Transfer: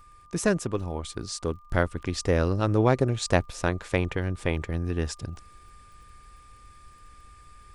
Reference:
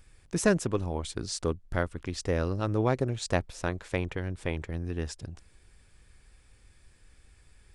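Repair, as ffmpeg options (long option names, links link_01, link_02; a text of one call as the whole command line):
ffmpeg -i in.wav -af "adeclick=threshold=4,bandreject=frequency=1200:width=30,asetnsamples=nb_out_samples=441:pad=0,asendcmd='1.7 volume volume -5dB',volume=0dB" out.wav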